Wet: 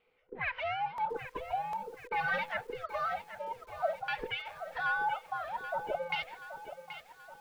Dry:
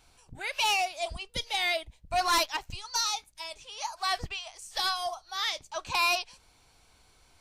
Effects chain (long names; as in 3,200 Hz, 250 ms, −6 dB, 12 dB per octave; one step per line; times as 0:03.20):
frequency inversion band by band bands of 500 Hz
noise gate −50 dBFS, range −13 dB
low-pass filter 3,800 Hz 12 dB per octave
brickwall limiter −28 dBFS, peak gain reduction 11.5 dB
auto-filter low-pass saw down 0.49 Hz 590–2,600 Hz
regular buffer underruns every 0.75 s, samples 64, repeat, from 0:00.98
feedback echo at a low word length 779 ms, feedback 55%, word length 9 bits, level −11 dB